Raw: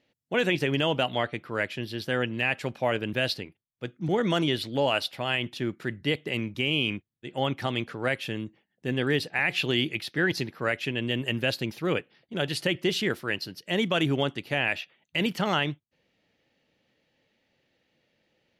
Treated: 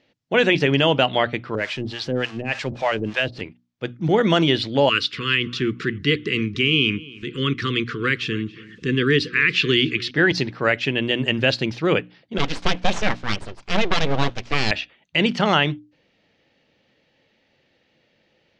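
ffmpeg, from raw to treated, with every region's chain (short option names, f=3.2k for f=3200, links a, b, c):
-filter_complex "[0:a]asettb=1/sr,asplit=3[a][b][c];[a]atrim=end=1.554[d];[b]atrim=start=1.55:end=3.41,asetpts=PTS-STARTPTS,afade=t=in:d=0.004:c=qsin,afade=t=out:st=1.856:d=0.004:c=qsin,aeval=exprs='val(0)+0.5*0.0133*sgn(val(0))':c=same,acrossover=split=570[e][f];[e]aeval=exprs='val(0)*(1-1/2+1/2*cos(2*PI*3.4*n/s))':c=same[g];[f]aeval=exprs='val(0)*(1-1/2-1/2*cos(2*PI*3.4*n/s))':c=same[h];[g][h]amix=inputs=2:normalize=0[i];[c]atrim=start=3.406[j];[d][i]acrossfade=d=0.004:c1=hsin:c2=qsin[k];[k][j]acrossfade=d=0.004:c1=qsin:c2=hsin,asettb=1/sr,asplit=3[l][m][n];[l]atrim=end=4.894[o];[m]atrim=start=4.89:end=10.11,asetpts=PTS-STARTPTS,afade=t=in:d=0.004:c=qsin,afade=t=out:st=5.216:d=0.004:c=qsin,acompressor=mode=upward:threshold=-30dB:ratio=2.5:attack=3.2:release=140:knee=2.83:detection=peak,asuperstop=centerf=720:order=12:qfactor=1.2,asplit=2[p][q];[q]adelay=278,lowpass=f=4k:p=1,volume=-20dB,asplit=2[r][s];[s]adelay=278,lowpass=f=4k:p=1,volume=0.29[t];[p][r][t]amix=inputs=3:normalize=0,atrim=end_sample=230202[u];[n]atrim=start=10.106[v];[o][u]acrossfade=d=0.004:c1=hsin:c2=qsin[w];[w][v]acrossfade=d=0.004:c1=qsin:c2=hsin,asettb=1/sr,asplit=3[x][y][z];[x]atrim=end=12.384[aa];[y]atrim=start=12.38:end=14.71,asetpts=PTS-STARTPTS,afade=t=in:d=0.004:c=qsin,afade=t=out:st=2.326:d=0.004:c=qsin,lowpass=f=3.3k:p=1,aecho=1:1:5.2:0.34,atrim=end_sample=102753,aeval=exprs='abs(val(0))':c=same[ab];[z]atrim=start=14.706[ac];[aa][ab]acrossfade=d=0.004:c1=hsin:c2=qsin[ad];[ad][ac]acrossfade=d=0.004:c1=qsin:c2=hsin,lowpass=f=6.2k:w=0.5412,lowpass=f=6.2k:w=1.3066,bandreject=f=60:t=h:w=6,bandreject=f=120:t=h:w=6,bandreject=f=180:t=h:w=6,bandreject=f=240:t=h:w=6,bandreject=f=300:t=h:w=6,volume=8dB"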